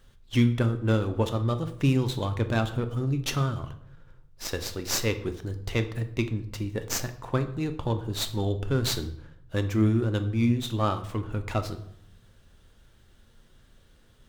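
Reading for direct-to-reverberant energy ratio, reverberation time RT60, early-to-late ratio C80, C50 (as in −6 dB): 8.0 dB, 0.70 s, 16.0 dB, 12.5 dB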